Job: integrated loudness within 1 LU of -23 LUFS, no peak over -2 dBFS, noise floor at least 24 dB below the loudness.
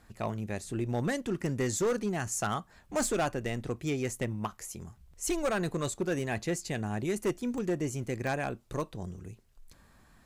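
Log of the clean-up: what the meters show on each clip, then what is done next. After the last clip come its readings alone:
clipped samples 1.4%; clipping level -24.0 dBFS; dropouts 2; longest dropout 1.4 ms; loudness -33.0 LUFS; peak level -24.0 dBFS; loudness target -23.0 LUFS
-> clip repair -24 dBFS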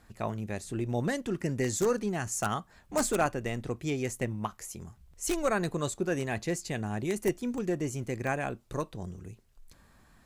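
clipped samples 0.0%; dropouts 2; longest dropout 1.4 ms
-> interpolate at 7.58/8.27 s, 1.4 ms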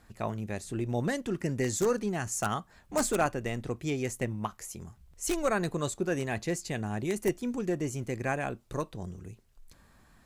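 dropouts 0; loudness -32.5 LUFS; peak level -15.0 dBFS; loudness target -23.0 LUFS
-> trim +9.5 dB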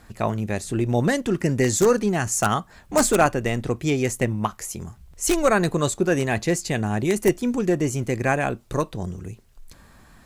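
loudness -23.0 LUFS; peak level -5.5 dBFS; noise floor -52 dBFS

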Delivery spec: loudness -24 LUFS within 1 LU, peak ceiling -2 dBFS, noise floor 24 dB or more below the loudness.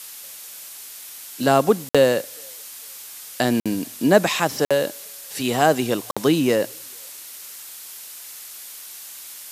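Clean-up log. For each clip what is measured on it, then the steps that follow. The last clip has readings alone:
dropouts 4; longest dropout 56 ms; noise floor -39 dBFS; noise floor target -45 dBFS; loudness -20.5 LUFS; peak level -1.5 dBFS; loudness target -24.0 LUFS
-> interpolate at 1.89/3.60/4.65/6.11 s, 56 ms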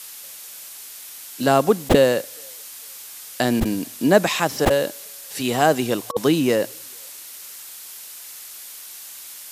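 dropouts 0; noise floor -39 dBFS; noise floor target -44 dBFS
-> noise print and reduce 6 dB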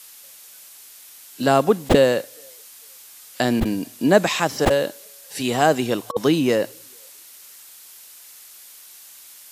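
noise floor -45 dBFS; loudness -20.0 LUFS; peak level -1.5 dBFS; loudness target -24.0 LUFS
-> trim -4 dB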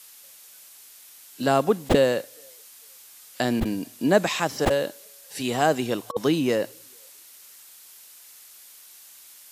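loudness -24.0 LUFS; peak level -5.5 dBFS; noise floor -49 dBFS

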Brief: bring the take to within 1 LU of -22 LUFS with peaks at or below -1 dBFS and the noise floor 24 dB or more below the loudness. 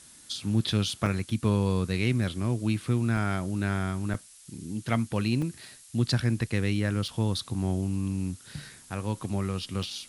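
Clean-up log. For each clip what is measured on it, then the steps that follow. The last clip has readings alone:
dropouts 6; longest dropout 3.5 ms; noise floor -52 dBFS; noise floor target -53 dBFS; loudness -29.0 LUFS; peak level -10.0 dBFS; loudness target -22.0 LUFS
-> interpolate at 1.06/3.17/4.14/5.42/7.08/9.83 s, 3.5 ms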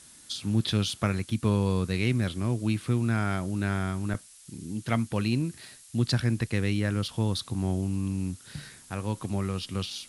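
dropouts 0; noise floor -52 dBFS; noise floor target -53 dBFS
-> noise print and reduce 6 dB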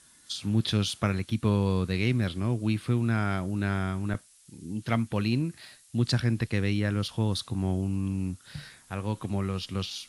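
noise floor -58 dBFS; loudness -29.0 LUFS; peak level -10.0 dBFS; loudness target -22.0 LUFS
-> trim +7 dB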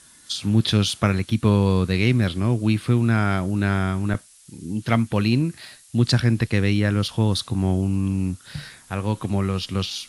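loudness -22.0 LUFS; peak level -3.0 dBFS; noise floor -51 dBFS

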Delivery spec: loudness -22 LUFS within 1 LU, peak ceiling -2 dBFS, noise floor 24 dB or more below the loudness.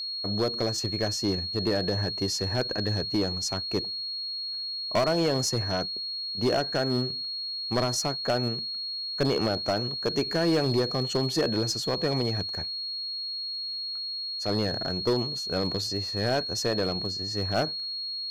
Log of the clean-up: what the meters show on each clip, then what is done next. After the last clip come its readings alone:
clipped samples 1.1%; clipping level -19.0 dBFS; steady tone 4.3 kHz; tone level -31 dBFS; loudness -27.5 LUFS; peak level -19.0 dBFS; loudness target -22.0 LUFS
-> clip repair -19 dBFS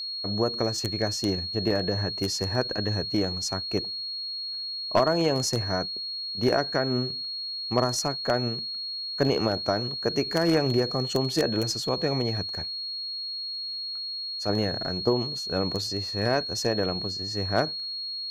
clipped samples 0.0%; steady tone 4.3 kHz; tone level -31 dBFS
-> band-stop 4.3 kHz, Q 30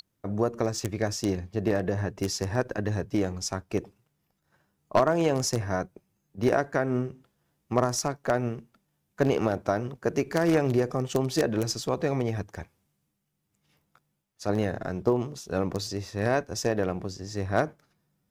steady tone not found; loudness -28.5 LUFS; peak level -9.5 dBFS; loudness target -22.0 LUFS
-> trim +6.5 dB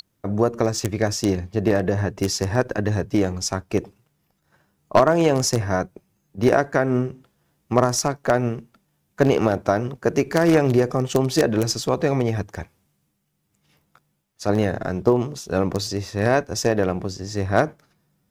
loudness -22.0 LUFS; peak level -3.0 dBFS; noise floor -71 dBFS

